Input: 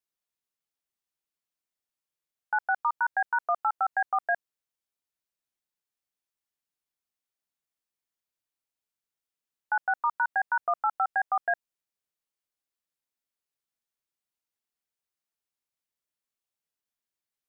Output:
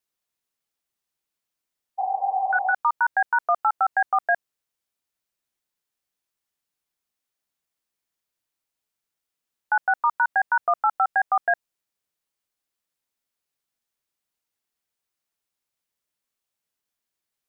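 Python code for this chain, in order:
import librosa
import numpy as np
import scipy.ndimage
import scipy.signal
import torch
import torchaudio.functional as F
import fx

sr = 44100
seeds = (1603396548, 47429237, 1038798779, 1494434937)

y = fx.spec_repair(x, sr, seeds[0], start_s=2.01, length_s=0.69, low_hz=320.0, high_hz=1100.0, source='after')
y = F.gain(torch.from_numpy(y), 5.5).numpy()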